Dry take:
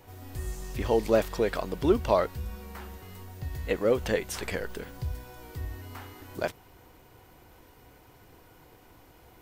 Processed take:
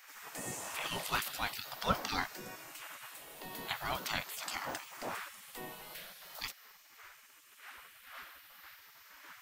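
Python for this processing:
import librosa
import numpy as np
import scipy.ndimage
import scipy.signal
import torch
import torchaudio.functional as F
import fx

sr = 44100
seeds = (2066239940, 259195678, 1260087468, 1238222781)

y = fx.spec_ripple(x, sr, per_octave=0.55, drift_hz=0.43, depth_db=6)
y = fx.dmg_wind(y, sr, seeds[0], corner_hz=480.0, level_db=-42.0)
y = fx.spec_gate(y, sr, threshold_db=-20, keep='weak')
y = F.gain(torch.from_numpy(y), 4.0).numpy()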